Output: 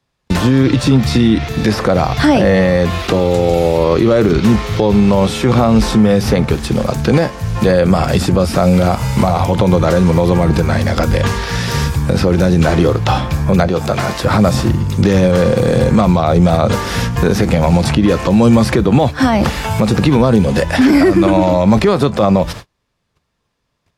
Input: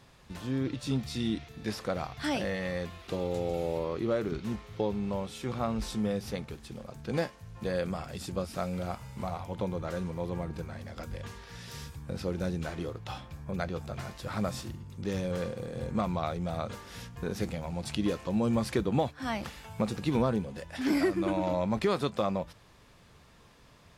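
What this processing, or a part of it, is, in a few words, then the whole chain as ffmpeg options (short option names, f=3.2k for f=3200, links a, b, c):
mastering chain: -filter_complex "[0:a]agate=range=-40dB:threshold=-51dB:ratio=16:detection=peak,equalizer=f=5.2k:t=o:w=0.77:g=2,acrossover=split=110|980|2200[a][b][c][d];[a]acompressor=threshold=-42dB:ratio=4[e];[b]acompressor=threshold=-32dB:ratio=4[f];[c]acompressor=threshold=-49dB:ratio=4[g];[d]acompressor=threshold=-54dB:ratio=4[h];[e][f][g][h]amix=inputs=4:normalize=0,acompressor=threshold=-35dB:ratio=1.5,alimiter=level_in=29dB:limit=-1dB:release=50:level=0:latency=1,asettb=1/sr,asplit=3[i][j][k];[i]atrim=end=13.674[l];[j]atrim=start=13.67:end=14.25,asetpts=PTS-STARTPTS,afade=t=in:d=0.004:c=qsin,afade=t=out:st=0.576:d=0.004:c=qsin,lowshelf=f=140:g=-11.5[m];[k]atrim=start=14.246[n];[l][m]acrossfade=d=0.004:c1=hsin:c2=qsin[o];[o][n]acrossfade=d=0.004:c1=qsin:c2=hsin,volume=-1dB"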